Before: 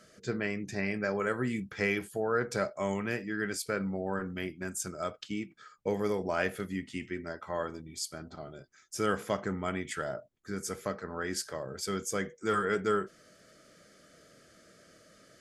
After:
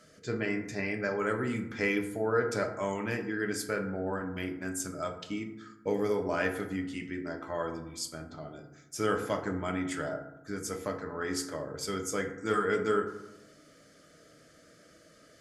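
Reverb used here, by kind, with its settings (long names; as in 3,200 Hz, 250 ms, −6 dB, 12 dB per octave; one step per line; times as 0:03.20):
feedback delay network reverb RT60 0.91 s, low-frequency decay 1.3×, high-frequency decay 0.4×, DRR 4 dB
level −1 dB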